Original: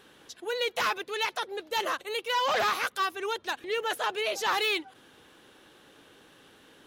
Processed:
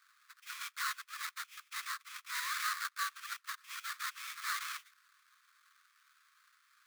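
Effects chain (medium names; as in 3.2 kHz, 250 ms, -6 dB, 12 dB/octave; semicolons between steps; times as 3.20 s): sample-rate reducer 2.9 kHz, jitter 20%; steep high-pass 1.1 kHz 96 dB/octave; trim -7 dB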